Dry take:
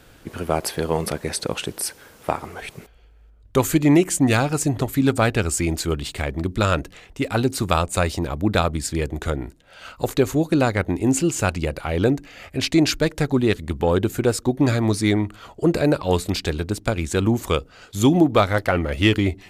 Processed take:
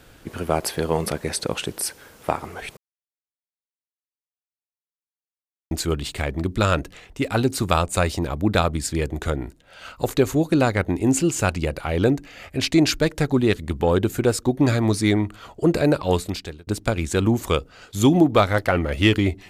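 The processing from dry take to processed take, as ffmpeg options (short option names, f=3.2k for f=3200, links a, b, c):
-filter_complex "[0:a]asplit=4[a][b][c][d];[a]atrim=end=2.77,asetpts=PTS-STARTPTS,afade=t=out:st=2.766:d=0.004:c=hsin[e];[b]atrim=start=2.77:end=5.71,asetpts=PTS-STARTPTS,volume=0[f];[c]atrim=start=5.71:end=16.67,asetpts=PTS-STARTPTS,afade=t=in:d=0.004:c=hsin,afade=t=out:st=10.38:d=0.58[g];[d]atrim=start=16.67,asetpts=PTS-STARTPTS,afade=t=in:d=0.004:c=hsin[h];[e][f][g][h]concat=n=4:v=0:a=1"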